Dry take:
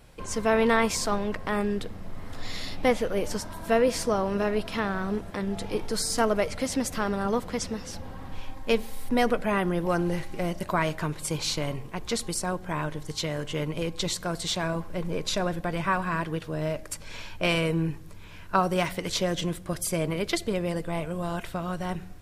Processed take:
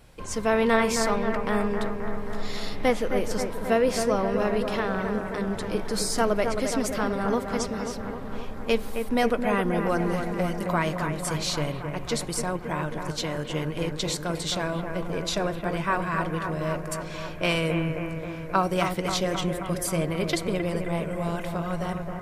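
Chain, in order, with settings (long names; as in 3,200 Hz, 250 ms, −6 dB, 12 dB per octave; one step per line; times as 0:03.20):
bucket-brigade delay 266 ms, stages 4,096, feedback 71%, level −6.5 dB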